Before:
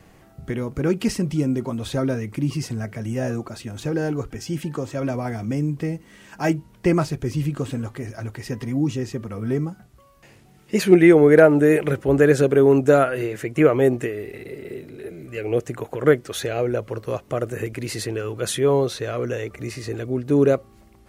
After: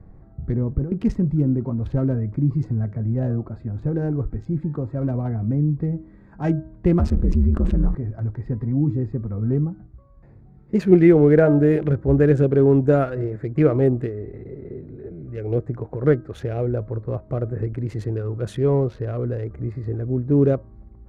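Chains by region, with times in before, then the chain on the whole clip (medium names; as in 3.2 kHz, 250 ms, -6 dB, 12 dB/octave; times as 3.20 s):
0.52–0.92 s: band-stop 1.4 kHz, Q 16 + compressor with a negative ratio -25 dBFS + tape spacing loss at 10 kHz 25 dB
6.99–7.95 s: ring modulator 71 Hz + level flattener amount 70%
whole clip: local Wiener filter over 15 samples; RIAA curve playback; de-hum 316.5 Hz, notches 5; trim -5.5 dB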